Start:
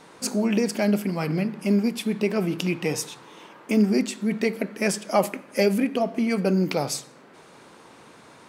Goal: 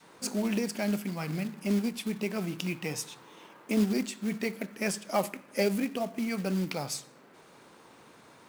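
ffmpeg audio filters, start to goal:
ffmpeg -i in.wav -af "adynamicequalizer=threshold=0.0158:dfrequency=420:dqfactor=0.93:tfrequency=420:tqfactor=0.93:attack=5:release=100:ratio=0.375:range=3.5:mode=cutabove:tftype=bell,acrusher=bits=4:mode=log:mix=0:aa=0.000001,volume=-6dB" out.wav

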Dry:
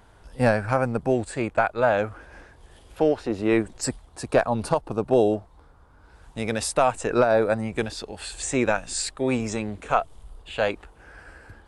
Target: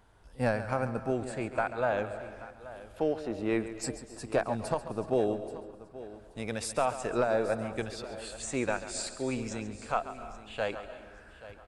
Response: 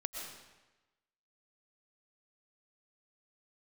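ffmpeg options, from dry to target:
-filter_complex "[0:a]asettb=1/sr,asplit=3[link_01][link_02][link_03];[link_01]atrim=end=9.304[link_04];[link_02]atrim=start=9.3:end=9.8,asetpts=PTS-STARTPTS,afade=type=in:duration=0.004:curve=qsin,afade=type=out:start_time=0.496:duration=0.004:curve=qsin,equalizer=frequency=740:width=0.98:gain=-6[link_05];[link_03]atrim=start=9.796[link_06];[link_04][link_05]acrossfade=duration=0.004:curve1=hsin:curve2=qsin[link_07];[link_07][link_06]acrossfade=duration=0.004:curve1=qsin:curve2=hsin,aecho=1:1:830|1660:0.15|0.0374,asplit=2[link_08][link_09];[1:a]atrim=start_sample=2205,adelay=138[link_10];[link_09][link_10]afir=irnorm=-1:irlink=0,volume=-11dB[link_11];[link_08][link_11]amix=inputs=2:normalize=0,volume=-8.5dB"

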